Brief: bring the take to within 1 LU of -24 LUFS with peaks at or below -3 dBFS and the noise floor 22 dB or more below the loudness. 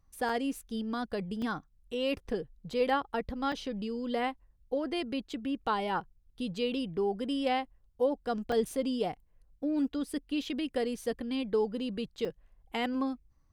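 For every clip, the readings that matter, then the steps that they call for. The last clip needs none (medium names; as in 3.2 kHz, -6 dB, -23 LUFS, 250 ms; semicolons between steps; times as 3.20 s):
dropouts 5; longest dropout 3.6 ms; loudness -33.5 LUFS; peak level -17.5 dBFS; loudness target -24.0 LUFS
-> interpolate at 0.29/1.42/3.52/8.52/12.25 s, 3.6 ms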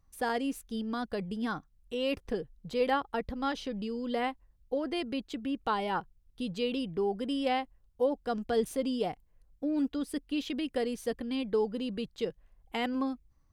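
dropouts 0; loudness -33.5 LUFS; peak level -17.5 dBFS; loudness target -24.0 LUFS
-> trim +9.5 dB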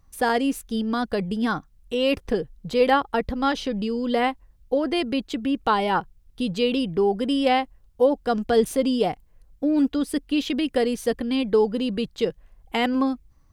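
loudness -24.0 LUFS; peak level -8.0 dBFS; noise floor -56 dBFS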